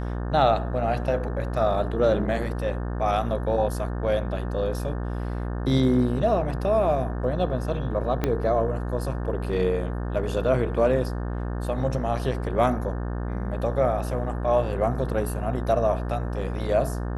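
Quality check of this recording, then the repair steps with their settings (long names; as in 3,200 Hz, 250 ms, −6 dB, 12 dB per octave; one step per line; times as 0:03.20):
mains buzz 60 Hz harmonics 30 −29 dBFS
0:08.24: click −11 dBFS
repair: click removal
hum removal 60 Hz, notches 30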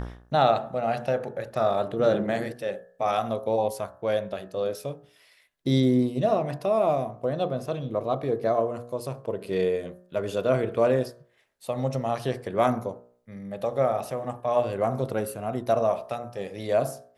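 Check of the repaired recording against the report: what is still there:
0:08.24: click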